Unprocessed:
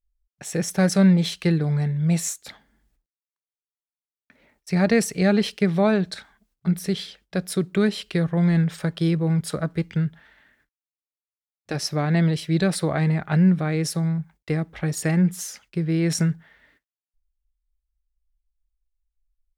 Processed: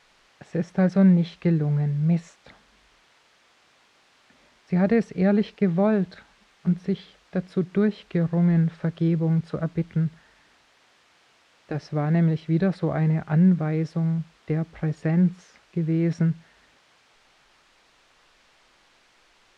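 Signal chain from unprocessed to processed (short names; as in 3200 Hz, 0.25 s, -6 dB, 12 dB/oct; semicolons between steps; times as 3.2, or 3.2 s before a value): added noise blue -38 dBFS; tape spacing loss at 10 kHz 37 dB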